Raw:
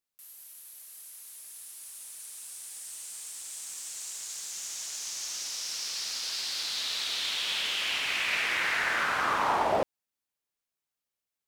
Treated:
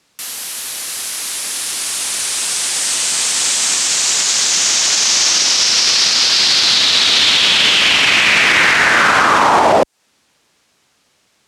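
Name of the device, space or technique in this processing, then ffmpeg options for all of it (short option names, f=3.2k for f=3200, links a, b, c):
mastering chain: -filter_complex "[0:a]highpass=52,equalizer=f=230:t=o:w=1.6:g=3.5,acrossover=split=280|6500[a][b][c];[a]acompressor=threshold=-56dB:ratio=4[d];[b]acompressor=threshold=-36dB:ratio=4[e];[c]acompressor=threshold=-47dB:ratio=4[f];[d][e][f]amix=inputs=3:normalize=0,acompressor=threshold=-42dB:ratio=1.5,alimiter=level_in=34.5dB:limit=-1dB:release=50:level=0:latency=1,lowpass=6.8k,volume=-1dB"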